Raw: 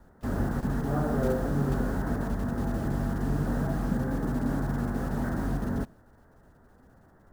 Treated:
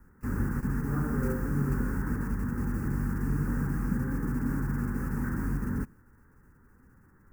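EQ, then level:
Butterworth band-reject 3,200 Hz, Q 4.6
high-shelf EQ 12,000 Hz +6 dB
phaser with its sweep stopped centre 1,600 Hz, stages 4
0.0 dB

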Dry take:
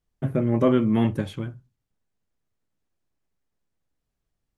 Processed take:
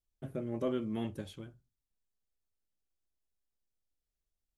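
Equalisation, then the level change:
octave-band graphic EQ 125/250/500/1,000/2,000 Hz −11/−6/−3/−8/−8 dB
−6.5 dB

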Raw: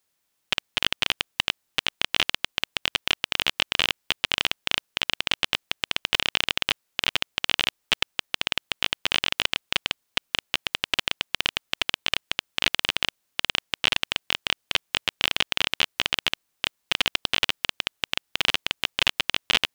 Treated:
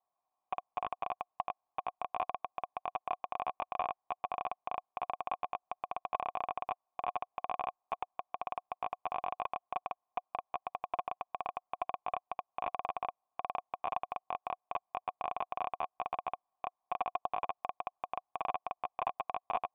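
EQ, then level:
formant resonators in series a
+9.5 dB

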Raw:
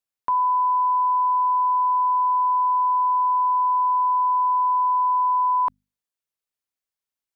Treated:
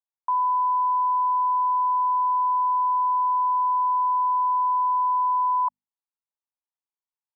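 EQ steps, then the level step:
resonant band-pass 910 Hz, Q 4.1
0.0 dB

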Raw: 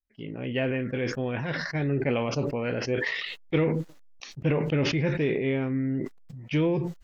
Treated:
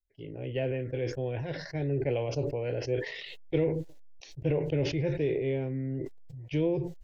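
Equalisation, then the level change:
low-shelf EQ 420 Hz +10.5 dB
parametric band 1,300 Hz +10.5 dB 0.35 octaves
phaser with its sweep stopped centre 520 Hz, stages 4
−6.0 dB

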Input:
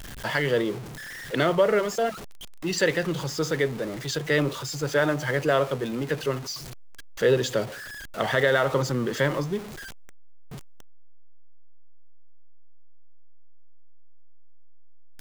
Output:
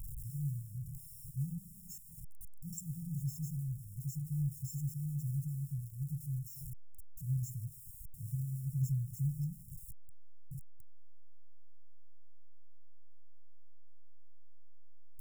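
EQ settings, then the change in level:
linear-phase brick-wall band-stop 170–5,300 Hz
phaser with its sweep stopped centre 1,700 Hz, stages 6
−1.5 dB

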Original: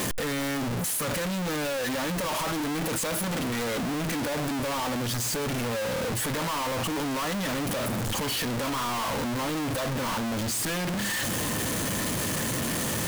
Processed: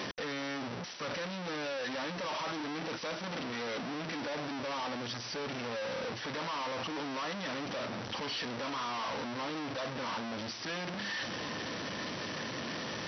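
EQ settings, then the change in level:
high-pass filter 310 Hz 6 dB per octave
linear-phase brick-wall low-pass 6,000 Hz
−6.0 dB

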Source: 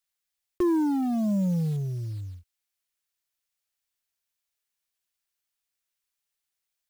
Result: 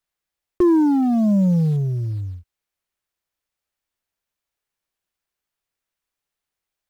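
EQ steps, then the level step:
high-shelf EQ 2,100 Hz −12 dB
dynamic equaliser 5,100 Hz, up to +4 dB, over −56 dBFS, Q 0.87
+8.5 dB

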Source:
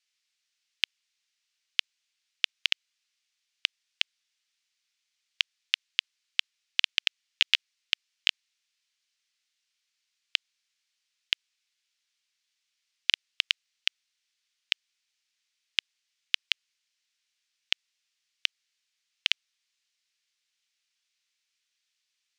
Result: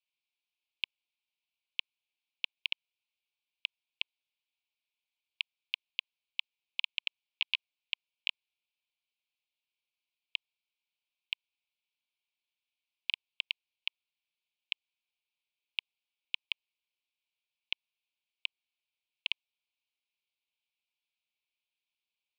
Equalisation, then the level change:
high-pass filter 660 Hz
elliptic band-stop filter 1,000–2,300 Hz
high-frequency loss of the air 410 metres
0.0 dB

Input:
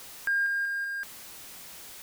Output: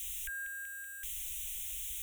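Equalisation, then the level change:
inverse Chebyshev band-stop filter 250–700 Hz, stop band 80 dB
Butterworth band-reject 4,700 Hz, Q 1.7
low-shelf EQ 240 Hz +11 dB
+6.0 dB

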